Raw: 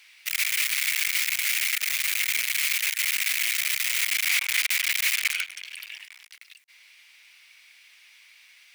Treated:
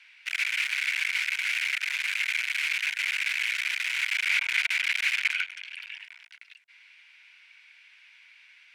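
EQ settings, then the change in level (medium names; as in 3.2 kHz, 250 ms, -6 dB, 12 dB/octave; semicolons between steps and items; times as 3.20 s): rippled Chebyshev high-pass 660 Hz, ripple 9 dB; distance through air 57 m; peaking EQ 1.5 kHz +14.5 dB 0.43 oct; 0.0 dB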